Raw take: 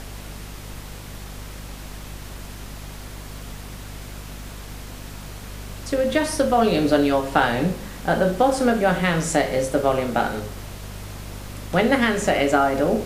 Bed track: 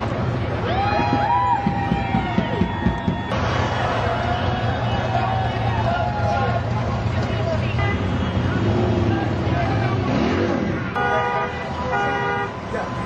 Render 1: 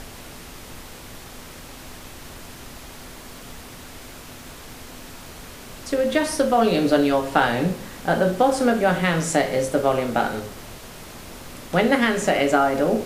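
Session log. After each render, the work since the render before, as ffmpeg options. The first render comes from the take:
-af "bandreject=f=50:t=h:w=6,bandreject=f=100:t=h:w=6,bandreject=f=150:t=h:w=6,bandreject=f=200:t=h:w=6"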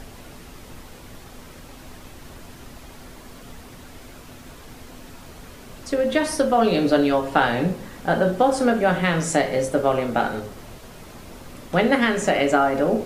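-af "afftdn=nr=6:nf=-41"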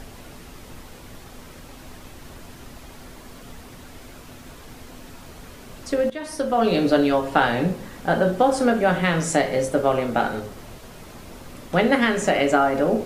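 -filter_complex "[0:a]asplit=2[a][b];[a]atrim=end=6.1,asetpts=PTS-STARTPTS,afade=t=out:st=6.096:d=0.004:c=hsin:silence=0.141254[c];[b]atrim=start=6.1,asetpts=PTS-STARTPTS,afade=t=in:d=0.63:silence=0.141254[d];[c][d]concat=n=2:v=0:a=1"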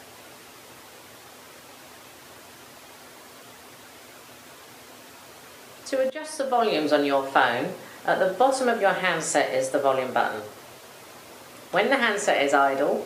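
-af "highpass=f=120:w=0.5412,highpass=f=120:w=1.3066,equalizer=f=180:w=1.1:g=-14.5"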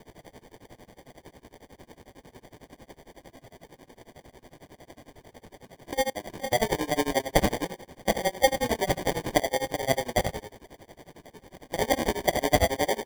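-af "acrusher=samples=33:mix=1:aa=0.000001,tremolo=f=11:d=0.96"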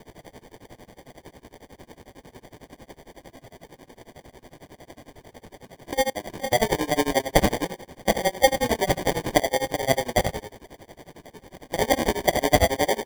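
-af "volume=3.5dB"

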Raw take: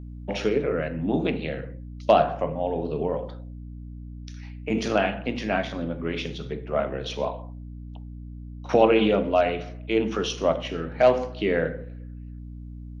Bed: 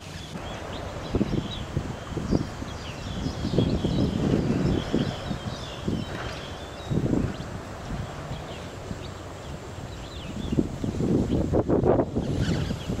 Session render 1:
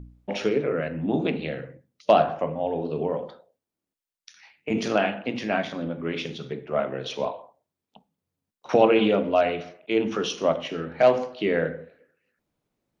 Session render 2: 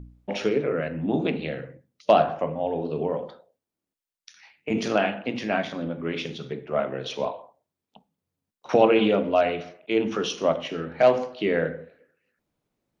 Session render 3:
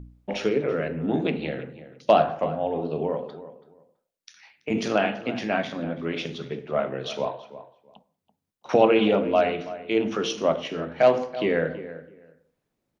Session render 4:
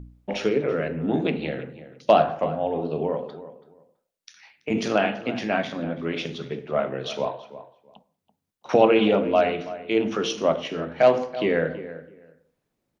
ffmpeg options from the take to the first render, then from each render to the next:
-af "bandreject=f=60:t=h:w=4,bandreject=f=120:t=h:w=4,bandreject=f=180:t=h:w=4,bandreject=f=240:t=h:w=4,bandreject=f=300:t=h:w=4"
-af anull
-filter_complex "[0:a]asplit=2[a][b];[b]adelay=331,lowpass=f=1.9k:p=1,volume=-14dB,asplit=2[c][d];[d]adelay=331,lowpass=f=1.9k:p=1,volume=0.2[e];[a][c][e]amix=inputs=3:normalize=0"
-af "volume=1dB"

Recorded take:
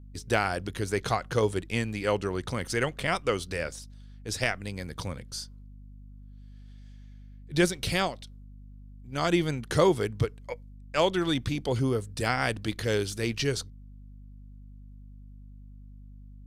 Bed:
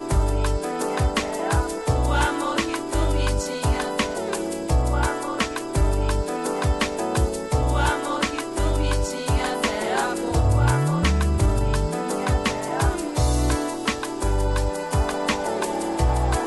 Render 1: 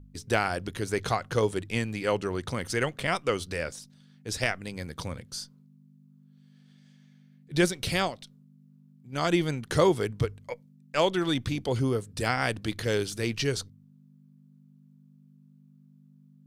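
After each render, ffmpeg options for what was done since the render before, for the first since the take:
-af "bandreject=f=50:t=h:w=4,bandreject=f=100:t=h:w=4"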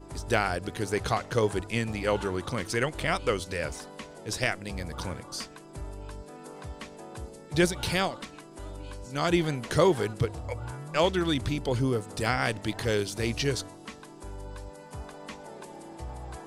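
-filter_complex "[1:a]volume=-19dB[a];[0:a][a]amix=inputs=2:normalize=0"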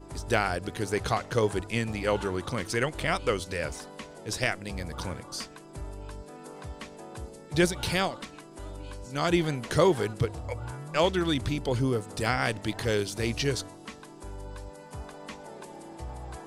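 -af anull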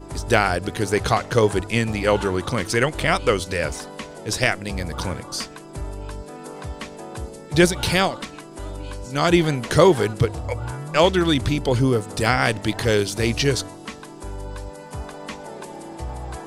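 -af "volume=8dB"

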